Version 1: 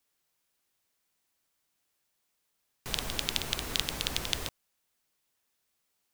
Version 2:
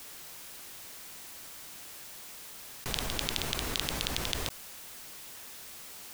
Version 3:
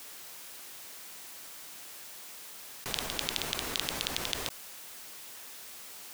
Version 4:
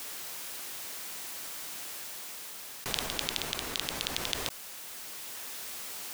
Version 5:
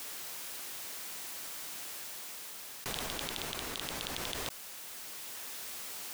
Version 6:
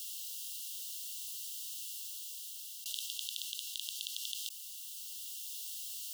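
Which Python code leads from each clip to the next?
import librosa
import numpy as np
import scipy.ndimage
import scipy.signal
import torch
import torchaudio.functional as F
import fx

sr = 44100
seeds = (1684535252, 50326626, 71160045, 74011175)

y1 = fx.env_flatten(x, sr, amount_pct=70)
y1 = y1 * librosa.db_to_amplitude(-3.5)
y2 = fx.low_shelf(y1, sr, hz=150.0, db=-11.0)
y3 = fx.rider(y2, sr, range_db=4, speed_s=2.0)
y3 = y3 * librosa.db_to_amplitude(2.0)
y4 = 10.0 ** (-19.0 / 20.0) * np.tanh(y3 / 10.0 ** (-19.0 / 20.0))
y4 = y4 * librosa.db_to_amplitude(-2.0)
y5 = fx.brickwall_highpass(y4, sr, low_hz=2700.0)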